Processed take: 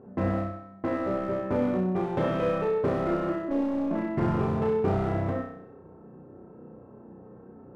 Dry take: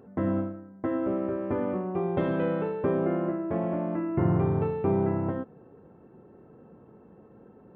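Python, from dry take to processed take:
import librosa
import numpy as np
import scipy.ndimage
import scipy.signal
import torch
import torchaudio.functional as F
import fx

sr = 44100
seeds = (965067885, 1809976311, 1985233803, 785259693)

p1 = fx.robotise(x, sr, hz=277.0, at=(3.48, 3.91))
p2 = 10.0 ** (-25.0 / 20.0) * (np.abs((p1 / 10.0 ** (-25.0 / 20.0) + 3.0) % 4.0 - 2.0) - 1.0)
p3 = p1 + (p2 * 10.0 ** (-5.0 / 20.0))
p4 = fx.env_lowpass(p3, sr, base_hz=1200.0, full_db=-23.5)
p5 = fx.room_flutter(p4, sr, wall_m=5.5, rt60_s=0.68)
y = p5 * 10.0 ** (-2.5 / 20.0)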